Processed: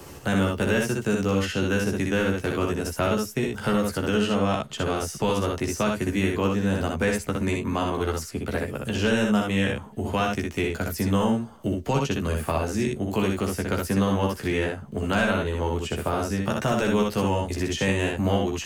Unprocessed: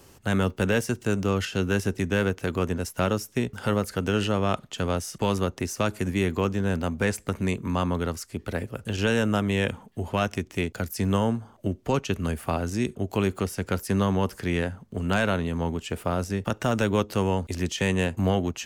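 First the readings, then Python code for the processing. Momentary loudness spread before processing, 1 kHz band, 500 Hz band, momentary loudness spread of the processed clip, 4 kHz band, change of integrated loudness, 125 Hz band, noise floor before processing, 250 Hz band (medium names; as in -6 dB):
6 LU, +2.0 dB, +2.0 dB, 5 LU, +2.0 dB, +1.5 dB, -0.5 dB, -54 dBFS, +2.0 dB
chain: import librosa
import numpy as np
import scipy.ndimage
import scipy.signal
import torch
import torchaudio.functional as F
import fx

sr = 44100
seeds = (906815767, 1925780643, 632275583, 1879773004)

y = fx.room_early_taps(x, sr, ms=(14, 62, 76), db=(-4.0, -4.0, -5.0))
y = fx.band_squash(y, sr, depth_pct=40)
y = y * librosa.db_to_amplitude(-1.5)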